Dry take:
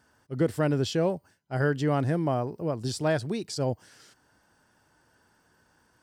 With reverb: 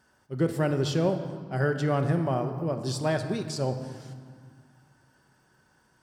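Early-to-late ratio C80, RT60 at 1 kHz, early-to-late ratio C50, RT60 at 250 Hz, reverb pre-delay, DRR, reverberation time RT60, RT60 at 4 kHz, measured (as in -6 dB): 10.0 dB, 2.2 s, 8.5 dB, 2.5 s, 5 ms, 5.5 dB, 2.1 s, 1.3 s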